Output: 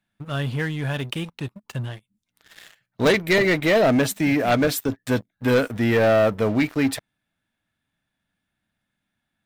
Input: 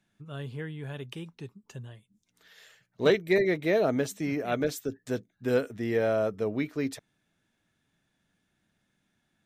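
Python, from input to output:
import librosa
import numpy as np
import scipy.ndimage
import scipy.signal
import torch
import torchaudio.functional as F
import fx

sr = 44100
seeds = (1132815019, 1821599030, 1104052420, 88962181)

y = fx.graphic_eq_15(x, sr, hz=(160, 400, 6300), db=(-4, -9, -8))
y = fx.leveller(y, sr, passes=3)
y = F.gain(torch.from_numpy(y), 4.0).numpy()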